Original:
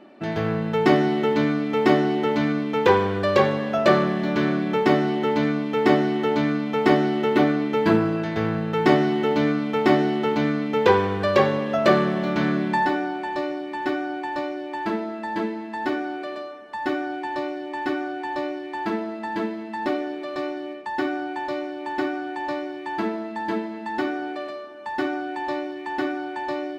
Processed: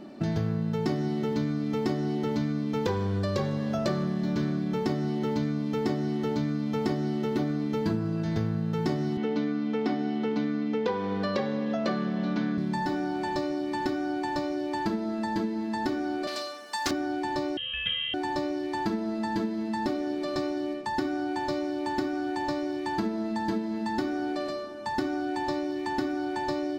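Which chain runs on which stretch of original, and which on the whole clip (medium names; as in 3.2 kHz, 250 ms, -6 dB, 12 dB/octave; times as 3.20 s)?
9.17–12.58 s: three-band isolator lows -17 dB, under 180 Hz, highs -18 dB, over 4.8 kHz + comb 4.1 ms, depth 46%
16.27–16.91 s: high-pass 220 Hz 6 dB/octave + tilt EQ +4 dB/octave + loudspeaker Doppler distortion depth 0.3 ms
17.57–18.14 s: frequency inversion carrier 3.5 kHz + peaking EQ 810 Hz -13.5 dB 1.1 oct
whole clip: tone controls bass +14 dB, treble -2 dB; compression, threshold -26 dBFS; resonant high shelf 3.7 kHz +9.5 dB, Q 1.5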